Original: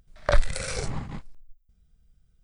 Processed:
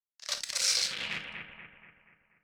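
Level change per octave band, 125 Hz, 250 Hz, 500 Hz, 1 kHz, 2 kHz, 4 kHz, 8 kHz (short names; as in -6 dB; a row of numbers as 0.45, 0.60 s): -23.0, -13.5, -18.5, -11.5, -1.5, +9.5, +7.5 dB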